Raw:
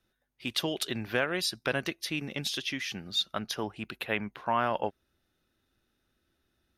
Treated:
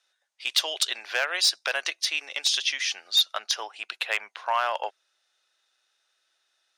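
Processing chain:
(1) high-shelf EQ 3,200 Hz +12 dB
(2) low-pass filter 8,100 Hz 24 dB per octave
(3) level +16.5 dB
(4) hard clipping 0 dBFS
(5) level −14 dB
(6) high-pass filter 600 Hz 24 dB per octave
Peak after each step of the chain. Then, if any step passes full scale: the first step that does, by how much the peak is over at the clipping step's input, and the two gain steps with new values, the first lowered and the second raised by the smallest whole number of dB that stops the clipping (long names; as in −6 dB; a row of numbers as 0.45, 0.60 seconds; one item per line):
−8.0, −9.0, +7.5, 0.0, −14.0, −10.0 dBFS
step 3, 7.5 dB
step 3 +8.5 dB, step 5 −6 dB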